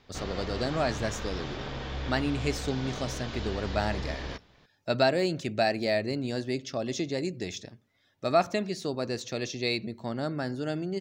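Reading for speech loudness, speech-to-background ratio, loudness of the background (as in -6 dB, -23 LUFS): -31.0 LUFS, 6.0 dB, -37.0 LUFS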